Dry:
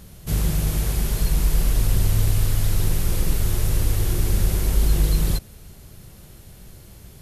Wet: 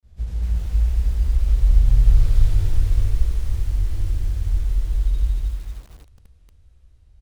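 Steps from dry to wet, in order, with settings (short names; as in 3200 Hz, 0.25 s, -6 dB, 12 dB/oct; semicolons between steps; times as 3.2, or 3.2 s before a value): Doppler pass-by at 2.37, 37 m/s, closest 12 m; air absorption 64 m; compressor 2:1, threshold -34 dBFS, peak gain reduction 10.5 dB; grains 0.148 s; resonant low shelf 100 Hz +13 dB, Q 1.5; echo 73 ms -5 dB; lo-fi delay 0.234 s, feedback 35%, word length 8-bit, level -5.5 dB; gain +4 dB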